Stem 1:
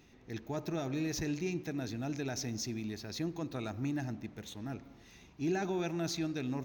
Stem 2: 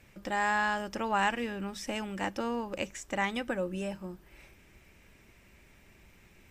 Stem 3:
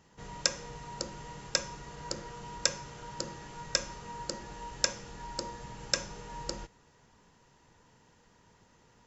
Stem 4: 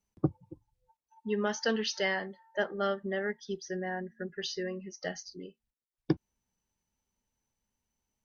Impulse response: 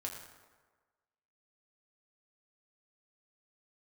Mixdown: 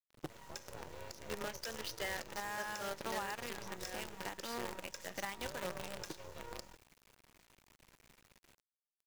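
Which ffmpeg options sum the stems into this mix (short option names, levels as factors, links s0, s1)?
-filter_complex "[0:a]highshelf=f=6700:g=-10,bandreject=f=80.89:t=h:w=4,bandreject=f=161.78:t=h:w=4,bandreject=f=242.67:t=h:w=4,bandreject=f=323.56:t=h:w=4,bandreject=f=404.45:t=h:w=4,bandreject=f=485.34:t=h:w=4,bandreject=f=566.23:t=h:w=4,bandreject=f=647.12:t=h:w=4,bandreject=f=728.01:t=h:w=4,bandreject=f=808.9:t=h:w=4,bandreject=f=889.79:t=h:w=4,bandreject=f=970.68:t=h:w=4,bandreject=f=1051.57:t=h:w=4,bandreject=f=1132.46:t=h:w=4,bandreject=f=1213.35:t=h:w=4,bandreject=f=1294.24:t=h:w=4,bandreject=f=1375.13:t=h:w=4,bandreject=f=1456.02:t=h:w=4,bandreject=f=1536.91:t=h:w=4,bandreject=f=1617.8:t=h:w=4,bandreject=f=1698.69:t=h:w=4,bandreject=f=1779.58:t=h:w=4,bandreject=f=1860.47:t=h:w=4,bandreject=f=1941.36:t=h:w=4,bandreject=f=2022.25:t=h:w=4,aeval=exprs='val(0)*sin(2*PI*220*n/s)':c=same,volume=0.562[s0];[1:a]acontrast=75,adelay=2050,volume=0.188[s1];[2:a]asoftclip=type=tanh:threshold=0.2,adelay=100,volume=0.447[s2];[3:a]volume=0.398[s3];[s0][s1][s2][s3]amix=inputs=4:normalize=0,acrossover=split=450|3000[s4][s5][s6];[s4]acompressor=threshold=0.00316:ratio=2.5[s7];[s7][s5][s6]amix=inputs=3:normalize=0,acrusher=bits=7:dc=4:mix=0:aa=0.000001,alimiter=level_in=2:limit=0.0631:level=0:latency=1:release=189,volume=0.501"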